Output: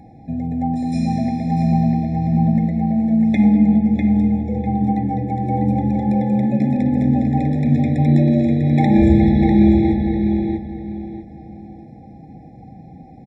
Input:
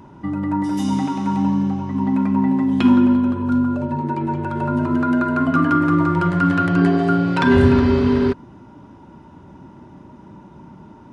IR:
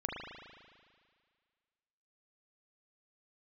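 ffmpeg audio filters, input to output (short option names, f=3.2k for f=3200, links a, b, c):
-filter_complex "[0:a]asetrate=37000,aresample=44100,asplit=2[a][b];[b]adelay=648,lowpass=f=3.6k:p=1,volume=-3.5dB,asplit=2[c][d];[d]adelay=648,lowpass=f=3.6k:p=1,volume=0.3,asplit=2[e][f];[f]adelay=648,lowpass=f=3.6k:p=1,volume=0.3,asplit=2[g][h];[h]adelay=648,lowpass=f=3.6k:p=1,volume=0.3[i];[a][c][e][g][i]amix=inputs=5:normalize=0,afftfilt=real='re*eq(mod(floor(b*sr/1024/840),2),0)':imag='im*eq(mod(floor(b*sr/1024/840),2),0)':win_size=1024:overlap=0.75"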